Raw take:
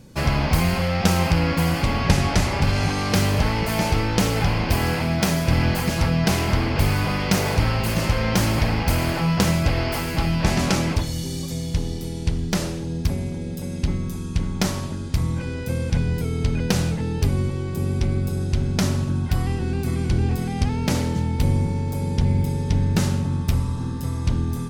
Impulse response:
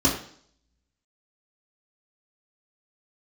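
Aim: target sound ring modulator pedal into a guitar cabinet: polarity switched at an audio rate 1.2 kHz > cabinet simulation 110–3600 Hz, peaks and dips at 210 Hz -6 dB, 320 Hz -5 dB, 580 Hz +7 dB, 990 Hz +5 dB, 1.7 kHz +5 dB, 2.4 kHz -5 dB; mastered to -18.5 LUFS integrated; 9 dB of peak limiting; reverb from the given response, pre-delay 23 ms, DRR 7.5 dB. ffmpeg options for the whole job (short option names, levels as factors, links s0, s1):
-filter_complex "[0:a]alimiter=limit=0.266:level=0:latency=1,asplit=2[s0][s1];[1:a]atrim=start_sample=2205,adelay=23[s2];[s1][s2]afir=irnorm=-1:irlink=0,volume=0.0794[s3];[s0][s3]amix=inputs=2:normalize=0,aeval=exprs='val(0)*sgn(sin(2*PI*1200*n/s))':c=same,highpass=110,equalizer=f=210:t=q:w=4:g=-6,equalizer=f=320:t=q:w=4:g=-5,equalizer=f=580:t=q:w=4:g=7,equalizer=f=990:t=q:w=4:g=5,equalizer=f=1700:t=q:w=4:g=5,equalizer=f=2400:t=q:w=4:g=-5,lowpass=f=3600:w=0.5412,lowpass=f=3600:w=1.3066,volume=0.75"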